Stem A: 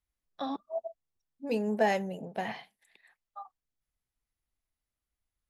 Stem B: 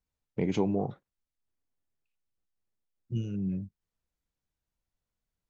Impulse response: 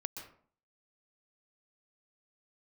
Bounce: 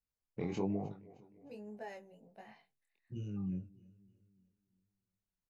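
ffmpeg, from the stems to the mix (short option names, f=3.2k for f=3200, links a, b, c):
-filter_complex "[0:a]volume=-17dB[a];[1:a]volume=-5.5dB,asplit=2[b][c];[c]volume=-19.5dB,aecho=0:1:309|618|927|1236|1545|1854:1|0.44|0.194|0.0852|0.0375|0.0165[d];[a][b][d]amix=inputs=3:normalize=0,flanger=delay=19:depth=4.9:speed=1.2,bandreject=f=3.3k:w=6.4"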